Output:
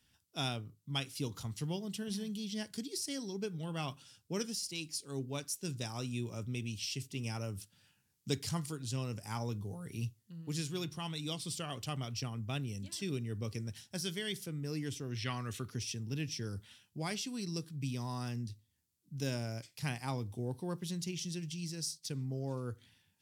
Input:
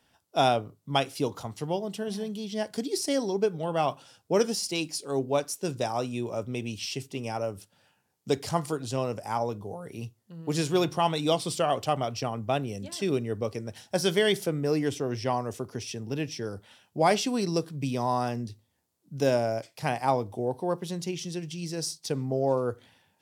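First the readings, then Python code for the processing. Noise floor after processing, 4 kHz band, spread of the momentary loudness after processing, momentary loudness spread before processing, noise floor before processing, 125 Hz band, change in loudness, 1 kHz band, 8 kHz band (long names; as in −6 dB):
−76 dBFS, −6.5 dB, 5 LU, 10 LU, −72 dBFS, −4.0 dB, −10.0 dB, −17.5 dB, −5.0 dB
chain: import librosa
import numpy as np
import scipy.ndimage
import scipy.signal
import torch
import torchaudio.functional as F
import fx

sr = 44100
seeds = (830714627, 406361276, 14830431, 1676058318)

y = fx.spec_box(x, sr, start_s=15.16, length_s=0.55, low_hz=1100.0, high_hz=4400.0, gain_db=9)
y = fx.tone_stack(y, sr, knobs='6-0-2')
y = fx.rider(y, sr, range_db=5, speed_s=0.5)
y = y * librosa.db_to_amplitude(10.5)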